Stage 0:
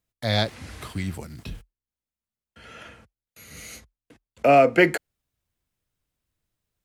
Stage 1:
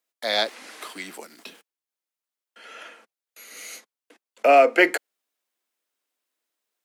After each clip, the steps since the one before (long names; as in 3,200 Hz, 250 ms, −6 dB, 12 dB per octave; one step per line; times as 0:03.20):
Bessel high-pass filter 450 Hz, order 8
level +2.5 dB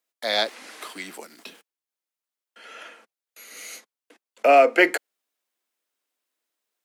no processing that can be heard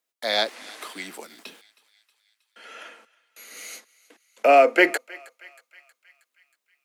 feedback echo with a high-pass in the loop 317 ms, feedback 61%, high-pass 980 Hz, level −21 dB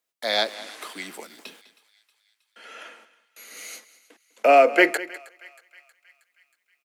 single-tap delay 202 ms −17.5 dB